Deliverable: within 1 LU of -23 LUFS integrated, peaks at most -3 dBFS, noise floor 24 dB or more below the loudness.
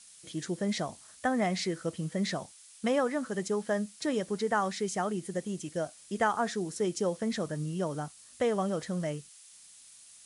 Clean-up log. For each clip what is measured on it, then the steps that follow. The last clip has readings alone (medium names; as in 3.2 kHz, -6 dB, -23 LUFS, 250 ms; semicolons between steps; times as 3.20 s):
noise floor -55 dBFS; noise floor target -57 dBFS; loudness -32.5 LUFS; peak level -15.0 dBFS; loudness target -23.0 LUFS
-> noise print and reduce 6 dB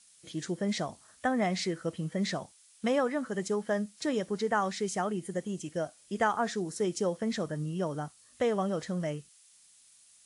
noise floor -61 dBFS; loudness -32.5 LUFS; peak level -15.0 dBFS; loudness target -23.0 LUFS
-> trim +9.5 dB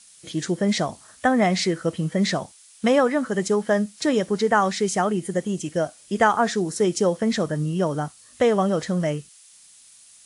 loudness -23.0 LUFS; peak level -5.5 dBFS; noise floor -51 dBFS